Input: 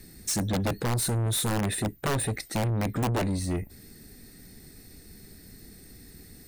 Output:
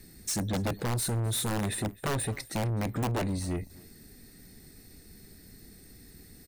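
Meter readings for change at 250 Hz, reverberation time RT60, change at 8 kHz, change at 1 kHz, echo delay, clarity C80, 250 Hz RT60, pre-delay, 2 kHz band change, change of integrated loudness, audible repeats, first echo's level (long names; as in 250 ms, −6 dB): −3.0 dB, no reverb audible, −3.0 dB, −3.0 dB, 258 ms, no reverb audible, no reverb audible, no reverb audible, −3.0 dB, −3.0 dB, 1, −22.5 dB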